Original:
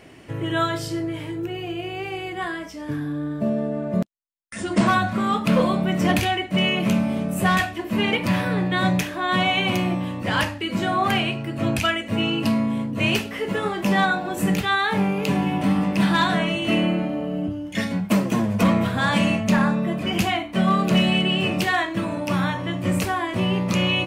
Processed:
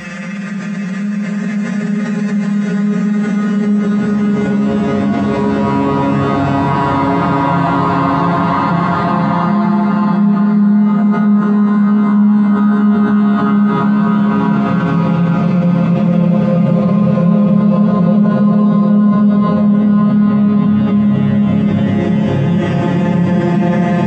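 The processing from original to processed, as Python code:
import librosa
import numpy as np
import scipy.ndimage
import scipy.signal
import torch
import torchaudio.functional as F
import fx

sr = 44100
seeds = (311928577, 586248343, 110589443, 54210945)

y = fx.vocoder_arp(x, sr, chord='major triad', root=49, every_ms=176)
y = fx.paulstretch(y, sr, seeds[0], factor=14.0, window_s=0.5, from_s=4.36)
y = fx.rev_fdn(y, sr, rt60_s=1.2, lf_ratio=0.9, hf_ratio=0.6, size_ms=88.0, drr_db=-2.5)
y = fx.env_flatten(y, sr, amount_pct=70)
y = y * librosa.db_to_amplitude(-1.0)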